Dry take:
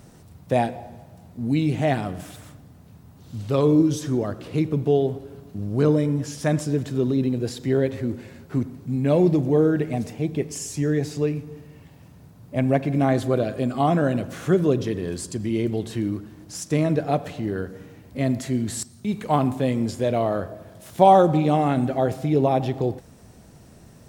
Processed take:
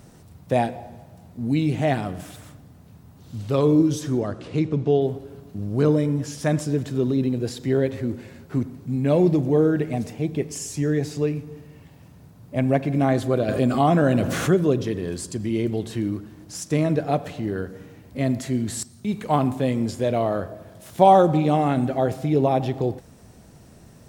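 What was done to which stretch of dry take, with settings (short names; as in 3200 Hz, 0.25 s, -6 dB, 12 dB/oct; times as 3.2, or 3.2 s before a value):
4.2–5 LPF 11000 Hz -> 6100 Hz 24 dB/oct
13.48–14.54 fast leveller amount 50%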